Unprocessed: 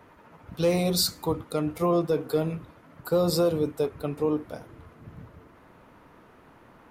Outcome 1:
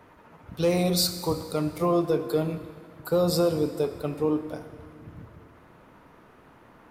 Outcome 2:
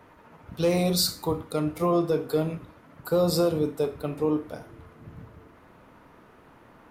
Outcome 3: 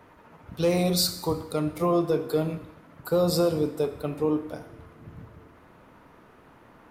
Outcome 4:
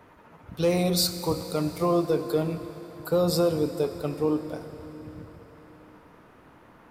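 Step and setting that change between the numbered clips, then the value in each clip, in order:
four-comb reverb, RT60: 1.9, 0.34, 0.88, 4.3 seconds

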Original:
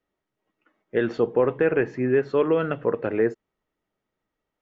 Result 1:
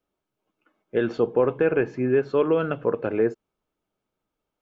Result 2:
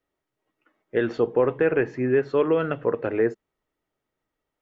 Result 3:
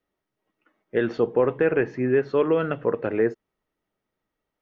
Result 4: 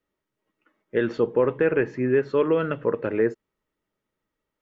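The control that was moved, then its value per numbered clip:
notch filter, centre frequency: 1,900, 200, 7,300, 730 Hertz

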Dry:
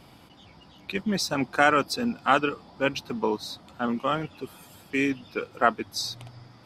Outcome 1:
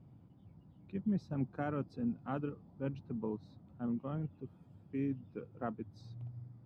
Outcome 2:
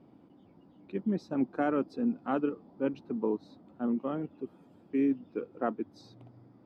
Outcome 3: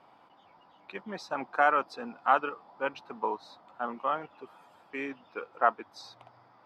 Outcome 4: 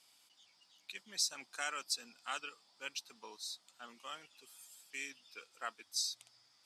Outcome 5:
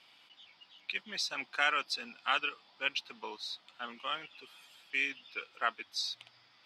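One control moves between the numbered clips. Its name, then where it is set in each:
resonant band-pass, frequency: 120, 290, 930, 7,700, 3,000 Hertz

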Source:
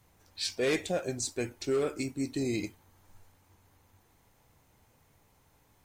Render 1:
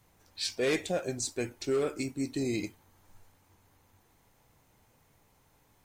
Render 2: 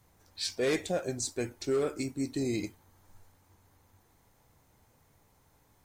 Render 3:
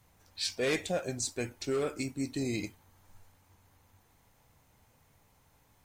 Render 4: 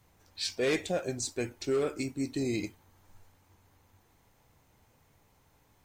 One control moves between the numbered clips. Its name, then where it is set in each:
parametric band, centre frequency: 76, 2,700, 360, 11,000 Hertz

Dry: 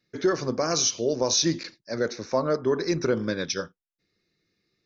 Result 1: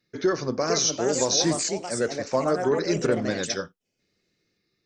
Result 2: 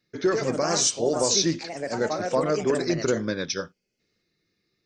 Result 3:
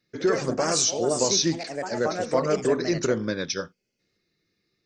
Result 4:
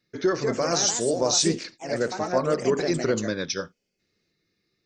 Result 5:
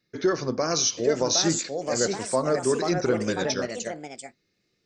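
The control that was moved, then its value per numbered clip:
delay with pitch and tempo change per echo, delay time: 492, 138, 89, 234, 858 milliseconds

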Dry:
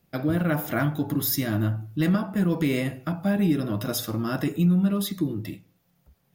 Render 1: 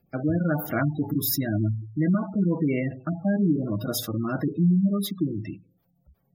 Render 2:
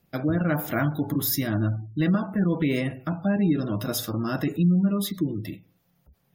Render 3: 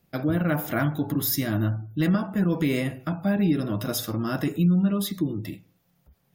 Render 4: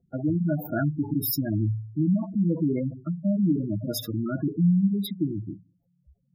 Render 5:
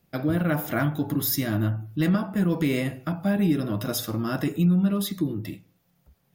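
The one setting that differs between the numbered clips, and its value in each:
gate on every frequency bin, under each frame's peak: −20, −35, −45, −10, −60 decibels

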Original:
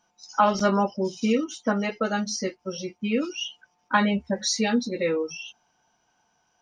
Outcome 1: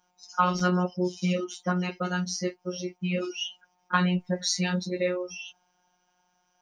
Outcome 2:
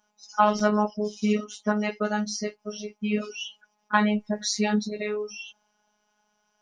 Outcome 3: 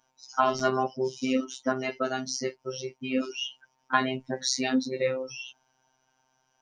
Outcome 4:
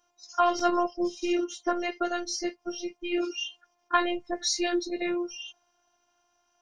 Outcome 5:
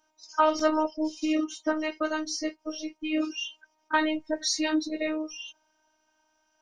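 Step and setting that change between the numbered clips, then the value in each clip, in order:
phases set to zero, frequency: 180, 210, 130, 350, 310 Hertz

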